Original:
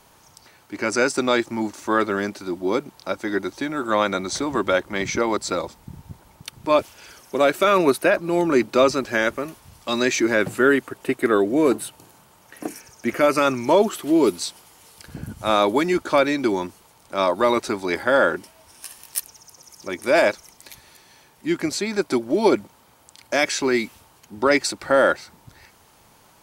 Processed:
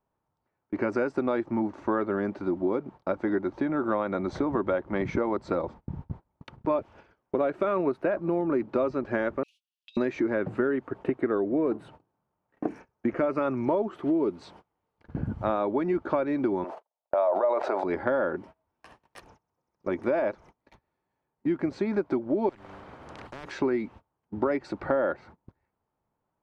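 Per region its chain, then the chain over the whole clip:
9.43–9.97 steep high-pass 2700 Hz 72 dB/oct + negative-ratio compressor -35 dBFS, ratio -0.5
16.64–17.84 gate -48 dBFS, range -58 dB + resonant high-pass 630 Hz, resonance Q 4.2 + sustainer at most 43 dB/s
22.49–23.51 de-hum 97.65 Hz, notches 4 + compressor 1.5:1, threshold -26 dBFS + spectral compressor 10:1
whole clip: gate -41 dBFS, range -27 dB; Bessel low-pass 960 Hz, order 2; compressor 6:1, threshold -27 dBFS; gain +3.5 dB

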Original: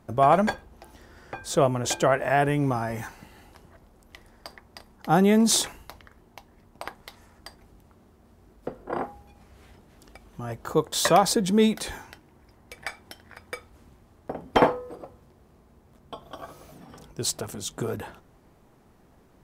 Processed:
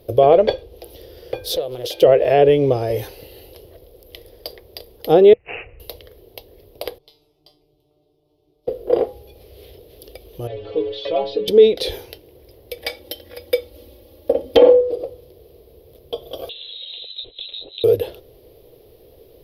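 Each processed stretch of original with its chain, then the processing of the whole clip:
1.56–2.02 low shelf 410 Hz -8.5 dB + compressor 5:1, threshold -33 dBFS + Doppler distortion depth 0.67 ms
5.33–5.8 compressor 5:1, threshold -28 dBFS + brick-wall FIR band-stop 160–6200 Hz + careless resampling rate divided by 8×, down none, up filtered
6.98–8.68 air absorption 67 m + fixed phaser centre 340 Hz, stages 8 + resonator 150 Hz, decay 0.33 s, mix 90%
10.47–11.48 zero-crossing step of -28 dBFS + LPF 3100 Hz 24 dB/oct + metallic resonator 100 Hz, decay 0.4 s, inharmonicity 0.008
12.81–14.81 HPF 55 Hz + comb 3.6 ms, depth 98%
16.49–17.84 compressor 12:1, threshold -40 dBFS + inverted band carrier 4000 Hz
whole clip: treble ducked by the level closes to 2700 Hz, closed at -16 dBFS; EQ curve 120 Hz 0 dB, 200 Hz -15 dB, 480 Hz +14 dB, 870 Hz -11 dB, 1500 Hz -15 dB, 3300 Hz +7 dB, 5000 Hz +4 dB, 7500 Hz -17 dB, 12000 Hz +14 dB; maximiser +8 dB; gain -1 dB

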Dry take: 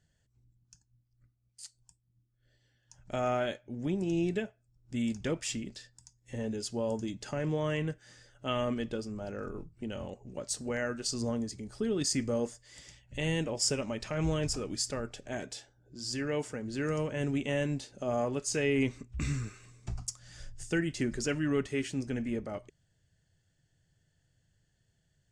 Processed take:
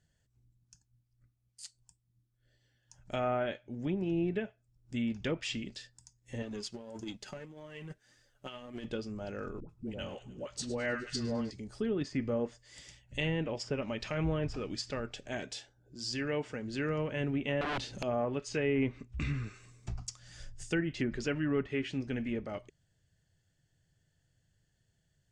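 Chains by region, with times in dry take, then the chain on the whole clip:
6.42–8.85 G.711 law mismatch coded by A + negative-ratio compressor -37 dBFS, ratio -0.5 + flange 1.7 Hz, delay 2.8 ms, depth 2.8 ms, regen +46%
9.6–11.51 dispersion highs, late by 90 ms, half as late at 600 Hz + thin delay 0.101 s, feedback 71%, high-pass 1700 Hz, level -13 dB
17.61–18.03 tone controls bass +8 dB, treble +5 dB + wrapped overs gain 28 dB + power-law curve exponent 0.7
whole clip: treble ducked by the level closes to 1600 Hz, closed at -26.5 dBFS; dynamic EQ 3000 Hz, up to +6 dB, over -56 dBFS, Q 0.96; gain -1.5 dB

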